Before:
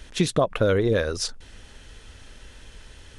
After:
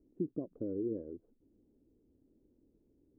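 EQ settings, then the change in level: ladder low-pass 350 Hz, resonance 60%; low shelf 79 Hz -11.5 dB; low shelf 180 Hz -10.5 dB; -3.0 dB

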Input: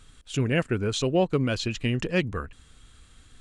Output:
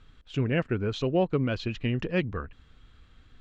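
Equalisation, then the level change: air absorption 210 m; -1.5 dB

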